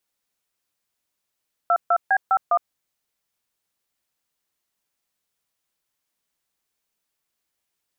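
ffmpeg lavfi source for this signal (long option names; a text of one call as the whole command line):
ffmpeg -f lavfi -i "aevalsrc='0.133*clip(min(mod(t,0.203),0.062-mod(t,0.203))/0.002,0,1)*(eq(floor(t/0.203),0)*(sin(2*PI*697*mod(t,0.203))+sin(2*PI*1336*mod(t,0.203)))+eq(floor(t/0.203),1)*(sin(2*PI*697*mod(t,0.203))+sin(2*PI*1336*mod(t,0.203)))+eq(floor(t/0.203),2)*(sin(2*PI*770*mod(t,0.203))+sin(2*PI*1633*mod(t,0.203)))+eq(floor(t/0.203),3)*(sin(2*PI*770*mod(t,0.203))+sin(2*PI*1336*mod(t,0.203)))+eq(floor(t/0.203),4)*(sin(2*PI*697*mod(t,0.203))+sin(2*PI*1209*mod(t,0.203))))':duration=1.015:sample_rate=44100" out.wav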